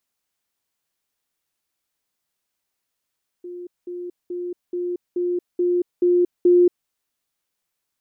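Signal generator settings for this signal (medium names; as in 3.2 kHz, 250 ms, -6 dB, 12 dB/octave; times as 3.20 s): level ladder 354 Hz -31.5 dBFS, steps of 3 dB, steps 8, 0.23 s 0.20 s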